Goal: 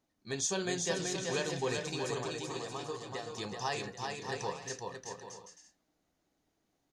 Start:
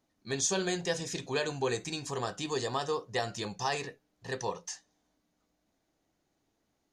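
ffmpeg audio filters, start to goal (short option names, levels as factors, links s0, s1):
-filter_complex "[0:a]asettb=1/sr,asplit=3[s0][s1][s2];[s0]atrim=end=2.224[s3];[s1]atrim=start=2.22:end=3.38,asetpts=PTS-STARTPTS,afade=t=in:d=0.004:c=qsin,afade=t=out:st=1.156:d=0.004:c=qsin,acompressor=threshold=0.0126:ratio=3[s4];[s2]atrim=start=3.376[s5];[s3][s4]acrossfade=d=0.004:c1=hsin:c2=qsin[s6];[s6][s5]acrossfade=d=0.004:c1=qsin:c2=hsin,asplit=2[s7][s8];[s8]aecho=0:1:380|627|787.6|891.9|959.7:0.631|0.398|0.251|0.158|0.1[s9];[s7][s9]amix=inputs=2:normalize=0,volume=0.668"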